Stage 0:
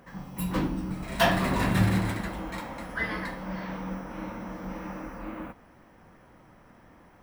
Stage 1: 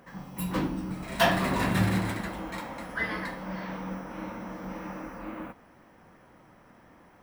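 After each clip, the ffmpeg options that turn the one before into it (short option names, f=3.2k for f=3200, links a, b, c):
-af "lowshelf=f=86:g=-8"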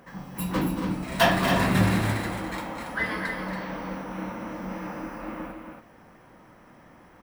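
-af "aecho=1:1:230.3|279.9:0.282|0.447,volume=2.5dB"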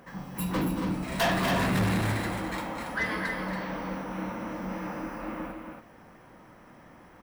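-af "asoftclip=type=tanh:threshold=-21dB"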